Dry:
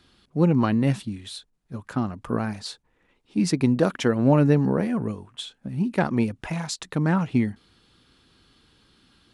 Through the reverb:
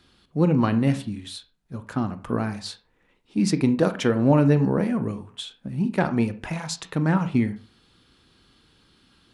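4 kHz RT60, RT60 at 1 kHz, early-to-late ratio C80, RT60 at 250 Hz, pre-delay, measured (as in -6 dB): 0.25 s, 0.40 s, 19.5 dB, 0.40 s, 23 ms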